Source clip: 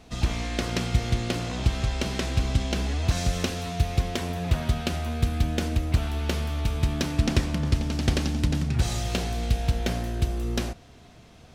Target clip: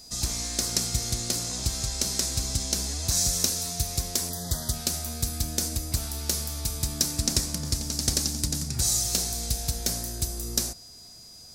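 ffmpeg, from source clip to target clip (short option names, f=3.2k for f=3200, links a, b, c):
-filter_complex "[0:a]aexciter=amount=10.6:drive=5.3:freq=4.4k,aeval=exprs='val(0)+0.01*sin(2*PI*4900*n/s)':c=same,asplit=3[a][b][c];[a]afade=t=out:st=4.29:d=0.02[d];[b]asuperstop=centerf=2500:order=20:qfactor=2.7,afade=t=in:st=4.29:d=0.02,afade=t=out:st=4.72:d=0.02[e];[c]afade=t=in:st=4.72:d=0.02[f];[d][e][f]amix=inputs=3:normalize=0,volume=-7dB"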